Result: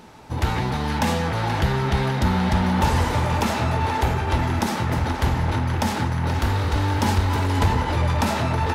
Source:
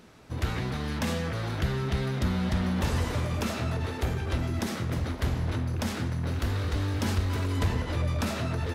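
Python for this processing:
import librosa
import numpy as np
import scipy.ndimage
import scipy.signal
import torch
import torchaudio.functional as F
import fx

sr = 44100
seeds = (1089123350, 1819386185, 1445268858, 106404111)

p1 = fx.peak_eq(x, sr, hz=870.0, db=13.0, octaves=0.26)
p2 = p1 + fx.echo_banded(p1, sr, ms=479, feedback_pct=77, hz=1600.0, wet_db=-5.0, dry=0)
y = F.gain(torch.from_numpy(p2), 6.5).numpy()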